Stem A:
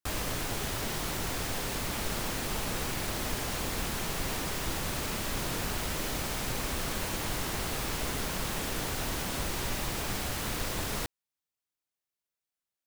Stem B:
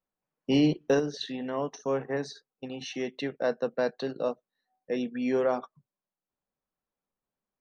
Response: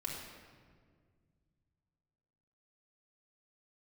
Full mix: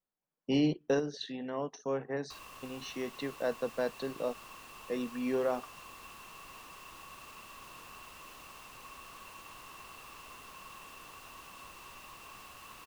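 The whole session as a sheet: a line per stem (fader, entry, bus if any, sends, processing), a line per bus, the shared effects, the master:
-19.0 dB, 2.25 s, no send, bass shelf 290 Hz -8.5 dB; small resonant body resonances 1.1/2.7 kHz, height 17 dB, ringing for 30 ms
-5.0 dB, 0.00 s, no send, none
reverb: none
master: none

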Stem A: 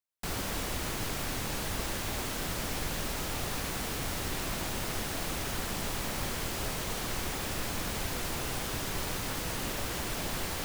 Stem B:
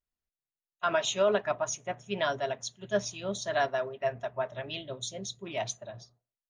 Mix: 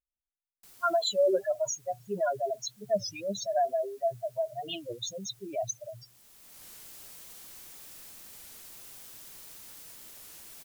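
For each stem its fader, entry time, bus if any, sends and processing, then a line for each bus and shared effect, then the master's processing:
-10.0 dB, 0.40 s, no send, pre-emphasis filter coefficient 0.8; auto duck -14 dB, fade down 1.55 s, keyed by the second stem
+2.0 dB, 0.00 s, no send, spectral contrast enhancement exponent 3.3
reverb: none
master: bass shelf 120 Hz -8 dB; warped record 33 1/3 rpm, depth 160 cents

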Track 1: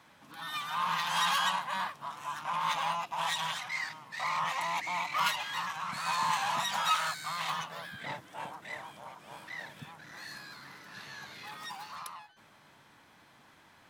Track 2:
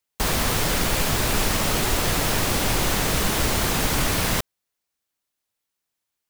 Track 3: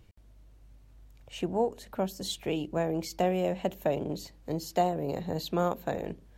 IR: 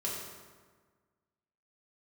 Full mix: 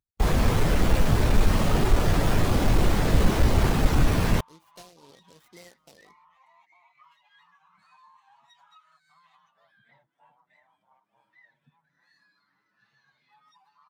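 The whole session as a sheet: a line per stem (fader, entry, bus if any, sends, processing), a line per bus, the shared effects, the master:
+2.0 dB, 1.85 s, no send, compression 12:1, threshold -39 dBFS, peak gain reduction 16 dB; endless flanger 7.2 ms +0.66 Hz
0.0 dB, 0.00 s, no send, square wave that keeps the level
-2.0 dB, 0.00 s, no send, bass shelf 280 Hz -11 dB; compression, threshold -27 dBFS, peak gain reduction 5 dB; delay time shaken by noise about 4.3 kHz, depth 0.31 ms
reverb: none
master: spectral contrast expander 1.5:1

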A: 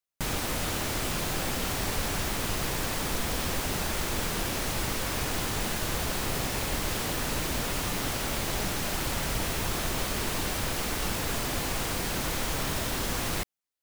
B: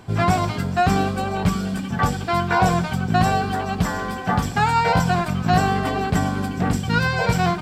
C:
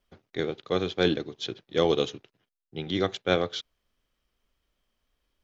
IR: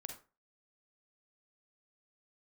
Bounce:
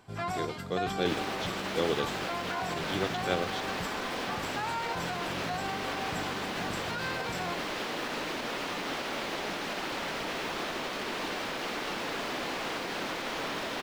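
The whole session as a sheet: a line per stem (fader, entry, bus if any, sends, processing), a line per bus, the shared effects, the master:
0.0 dB, 0.85 s, bus A, no send, three-band isolator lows -23 dB, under 210 Hz, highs -19 dB, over 4.8 kHz
-10.5 dB, 0.00 s, bus A, no send, bass shelf 320 Hz -9.5 dB
-6.5 dB, 0.00 s, no bus, no send, none
bus A: 0.0 dB, peak limiter -24.5 dBFS, peak gain reduction 7 dB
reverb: none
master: none

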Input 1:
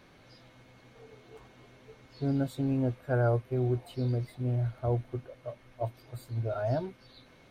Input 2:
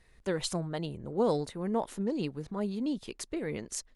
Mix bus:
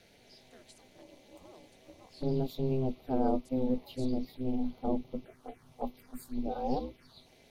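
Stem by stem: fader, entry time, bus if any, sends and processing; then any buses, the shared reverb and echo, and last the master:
+2.0 dB, 0.00 s, no send, touch-sensitive phaser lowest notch 160 Hz, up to 1.6 kHz, full sweep at -32.5 dBFS
-12.0 dB, 0.25 s, no send, high-pass 340 Hz; auto duck -12 dB, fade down 0.70 s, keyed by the first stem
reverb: none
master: ring modulator 130 Hz; treble shelf 4.3 kHz +7 dB

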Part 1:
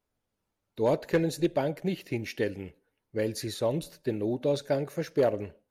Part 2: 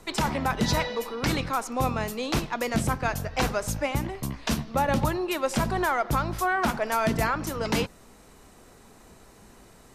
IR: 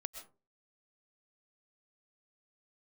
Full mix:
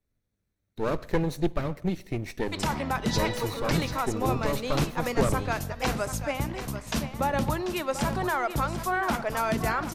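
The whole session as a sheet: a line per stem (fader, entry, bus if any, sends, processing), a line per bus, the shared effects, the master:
-3.5 dB, 0.00 s, send -12.5 dB, no echo send, comb filter that takes the minimum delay 0.51 ms; bass shelf 200 Hz +10.5 dB
-3.0 dB, 2.45 s, send -19 dB, echo send -9.5 dB, none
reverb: on, RT60 0.35 s, pre-delay 85 ms
echo: delay 740 ms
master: none

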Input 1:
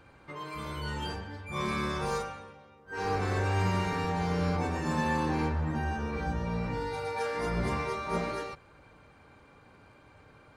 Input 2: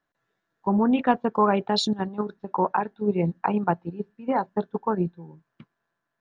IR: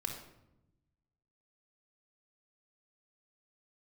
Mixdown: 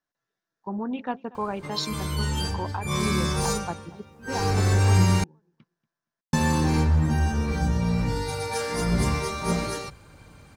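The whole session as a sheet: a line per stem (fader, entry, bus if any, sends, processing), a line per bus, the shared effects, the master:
+2.5 dB, 1.35 s, muted 5.24–6.33 s, no send, no echo send, tone controls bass +9 dB, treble +15 dB; hum notches 60/120 Hz
-9.5 dB, 0.00 s, no send, echo send -22.5 dB, peaking EQ 5.5 kHz +10.5 dB 0.8 oct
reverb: none
echo: feedback delay 235 ms, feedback 20%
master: none

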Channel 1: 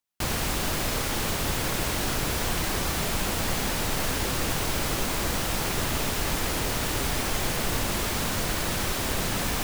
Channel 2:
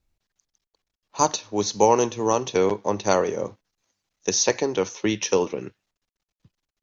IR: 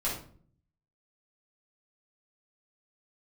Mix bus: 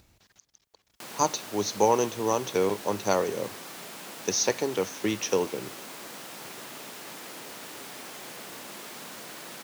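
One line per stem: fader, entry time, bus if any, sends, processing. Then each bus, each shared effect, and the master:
-12.5 dB, 0.80 s, no send, Bessel high-pass 250 Hz, order 4
-4.5 dB, 0.00 s, no send, none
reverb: none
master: high-pass 66 Hz; upward compressor, threshold -43 dBFS

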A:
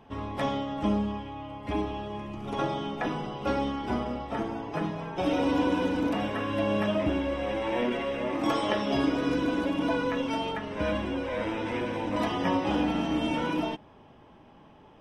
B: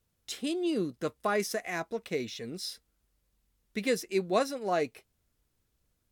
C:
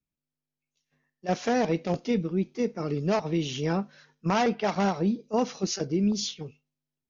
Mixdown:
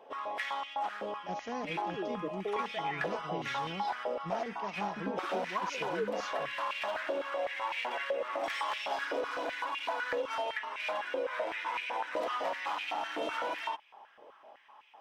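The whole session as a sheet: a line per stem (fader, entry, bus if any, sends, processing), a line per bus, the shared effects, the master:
-3.5 dB, 0.00 s, no send, hard clipper -26.5 dBFS, distortion -11 dB; step-sequenced high-pass 7.9 Hz 520–2400 Hz
-13.0 dB, 1.20 s, no send, phaser 0.49 Hz, delay 3.3 ms, feedback 60%; step-sequenced low-pass 2.2 Hz 340–3300 Hz
-14.5 dB, 0.00 s, no send, none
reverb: none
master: compression, threshold -30 dBFS, peak gain reduction 8 dB

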